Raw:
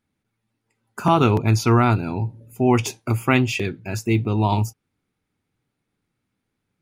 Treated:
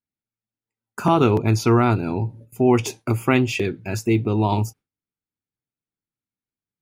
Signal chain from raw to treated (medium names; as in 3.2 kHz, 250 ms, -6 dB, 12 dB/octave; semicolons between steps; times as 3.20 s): dynamic bell 390 Hz, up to +5 dB, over -32 dBFS, Q 1.1; in parallel at -1 dB: compression, threshold -24 dBFS, peak gain reduction 14 dB; on the sum: gate with hold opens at -31 dBFS; trim -4 dB